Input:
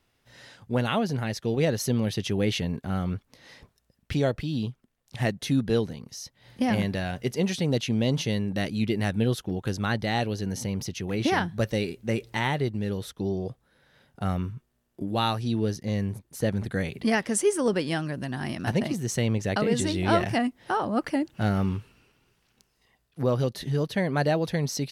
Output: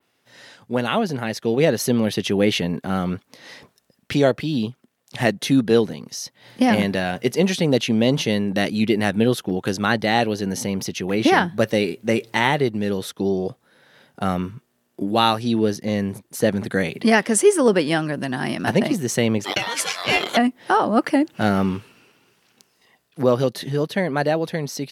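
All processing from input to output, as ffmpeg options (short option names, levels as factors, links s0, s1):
-filter_complex "[0:a]asettb=1/sr,asplit=3[s0][s1][s2];[s0]atrim=end=19.444[s3];[s1]atrim=start=19.44:end=20.37,asetpts=PTS-STARTPTS,afade=t=in:d=0.004:c=qsin,afade=t=out:st=0.926:d=0.004:c=qsin,highpass=1100,acontrast=25,aeval=exprs='val(0)*sin(2*PI*1400*n/s)':c=same[s4];[s2]atrim=start=20.366[s5];[s3][s4]acrossfade=d=0.004:c1=hsin:c2=qsin[s6];[s6][s5]acrossfade=d=0.004:c1=qsin:c2=hsin,highpass=190,adynamicequalizer=threshold=0.00355:dfrequency=6000:dqfactor=0.85:tfrequency=6000:tqfactor=0.85:attack=5:release=100:ratio=0.375:range=2:mode=cutabove:tftype=bell,dynaudnorm=f=160:g=17:m=1.68,volume=1.68"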